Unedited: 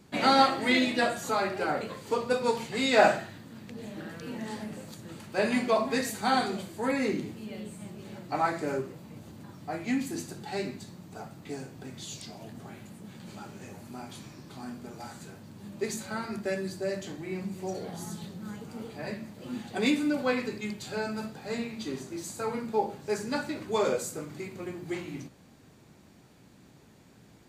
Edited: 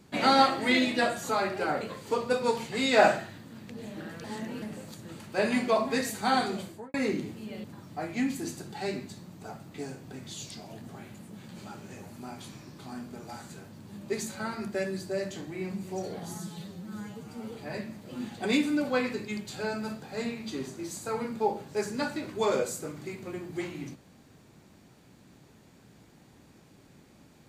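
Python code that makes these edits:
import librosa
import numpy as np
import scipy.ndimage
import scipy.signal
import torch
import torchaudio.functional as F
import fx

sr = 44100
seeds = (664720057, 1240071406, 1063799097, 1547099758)

y = fx.studio_fade_out(x, sr, start_s=6.65, length_s=0.29)
y = fx.edit(y, sr, fx.reverse_span(start_s=4.24, length_s=0.38),
    fx.cut(start_s=7.64, length_s=1.71),
    fx.stretch_span(start_s=18.09, length_s=0.76, factor=1.5), tone=tone)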